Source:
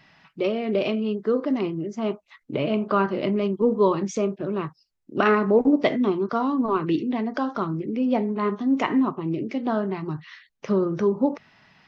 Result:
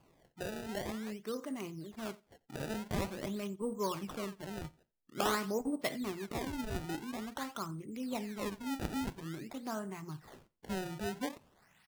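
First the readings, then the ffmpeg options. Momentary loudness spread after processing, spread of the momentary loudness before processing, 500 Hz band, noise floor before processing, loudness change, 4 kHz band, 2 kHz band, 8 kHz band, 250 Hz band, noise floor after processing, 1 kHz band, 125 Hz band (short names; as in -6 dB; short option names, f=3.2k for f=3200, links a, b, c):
9 LU, 9 LU, -17.0 dB, -69 dBFS, -15.5 dB, -6.0 dB, -11.0 dB, n/a, -16.0 dB, -74 dBFS, -13.5 dB, -12.0 dB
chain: -filter_complex "[0:a]equalizer=f=370:w=0.54:g=-9.5,acrusher=samples=23:mix=1:aa=0.000001:lfo=1:lforange=36.8:lforate=0.48,asplit=2[a][b];[b]aecho=0:1:88|176:0.0631|0.0126[c];[a][c]amix=inputs=2:normalize=0,volume=-8.5dB"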